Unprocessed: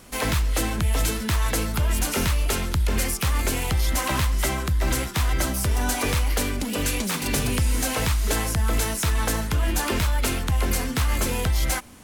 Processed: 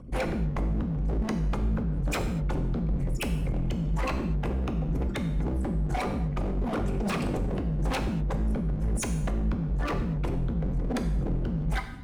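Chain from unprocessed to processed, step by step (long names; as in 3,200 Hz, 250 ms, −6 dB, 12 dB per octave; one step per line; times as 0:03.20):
spectral envelope exaggerated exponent 3
low-pass filter 3,000 Hz 6 dB per octave
downward compressor 16 to 1, threshold −24 dBFS, peak gain reduction 7 dB
rotating-speaker cabinet horn 5.5 Hz, later 1.2 Hz, at 0:08.94
wave folding −30.5 dBFS
reverb whose tail is shaped and stops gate 270 ms falling, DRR 5.5 dB
level +6 dB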